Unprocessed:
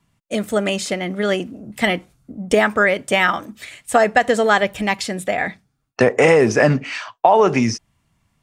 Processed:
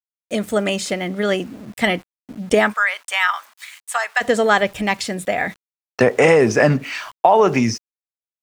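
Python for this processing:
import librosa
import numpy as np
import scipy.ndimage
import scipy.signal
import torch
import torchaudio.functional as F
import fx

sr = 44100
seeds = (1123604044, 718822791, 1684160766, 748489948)

y = np.where(np.abs(x) >= 10.0 ** (-40.5 / 20.0), x, 0.0)
y = fx.cheby1_highpass(y, sr, hz=1000.0, order=3, at=(2.72, 4.2), fade=0.02)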